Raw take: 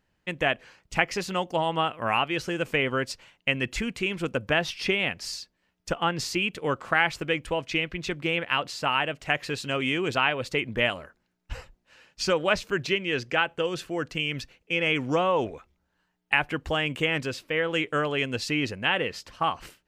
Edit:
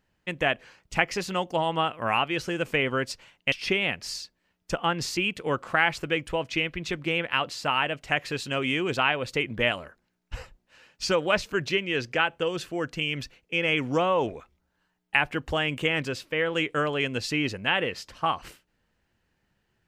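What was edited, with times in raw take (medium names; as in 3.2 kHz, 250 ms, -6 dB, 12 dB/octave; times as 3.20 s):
3.52–4.70 s: delete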